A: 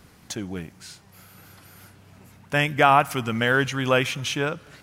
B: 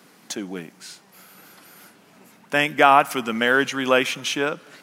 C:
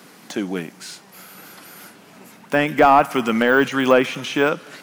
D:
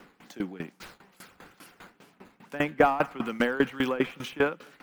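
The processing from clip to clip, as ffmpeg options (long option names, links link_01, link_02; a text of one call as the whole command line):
ffmpeg -i in.wav -af "highpass=frequency=200:width=0.5412,highpass=frequency=200:width=1.3066,volume=2.5dB" out.wav
ffmpeg -i in.wav -af "deesser=0.9,volume=6.5dB" out.wav
ffmpeg -i in.wav -filter_complex "[0:a]acrossover=split=250|3600[link_01][link_02][link_03];[link_03]acrusher=samples=9:mix=1:aa=0.000001:lfo=1:lforange=14.4:lforate=2.3[link_04];[link_01][link_02][link_04]amix=inputs=3:normalize=0,bandreject=frequency=630:width=12,aeval=exprs='val(0)*pow(10,-20*if(lt(mod(5*n/s,1),2*abs(5)/1000),1-mod(5*n/s,1)/(2*abs(5)/1000),(mod(5*n/s,1)-2*abs(5)/1000)/(1-2*abs(5)/1000))/20)':channel_layout=same,volume=-3dB" out.wav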